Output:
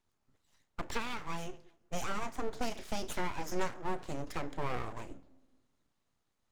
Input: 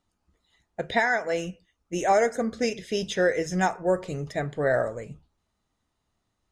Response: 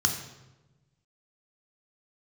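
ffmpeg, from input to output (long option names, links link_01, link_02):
-filter_complex "[0:a]acrossover=split=300[link_01][link_02];[link_02]acompressor=threshold=-31dB:ratio=5[link_03];[link_01][link_03]amix=inputs=2:normalize=0,asplit=2[link_04][link_05];[1:a]atrim=start_sample=2205,adelay=30[link_06];[link_05][link_06]afir=irnorm=-1:irlink=0,volume=-25dB[link_07];[link_04][link_07]amix=inputs=2:normalize=0,aeval=exprs='abs(val(0))':channel_layout=same,volume=-3dB"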